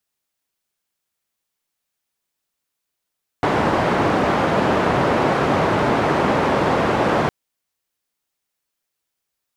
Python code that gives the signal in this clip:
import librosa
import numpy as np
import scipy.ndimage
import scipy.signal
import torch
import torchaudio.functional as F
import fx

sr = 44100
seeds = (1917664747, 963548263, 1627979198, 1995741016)

y = fx.band_noise(sr, seeds[0], length_s=3.86, low_hz=100.0, high_hz=880.0, level_db=-18.0)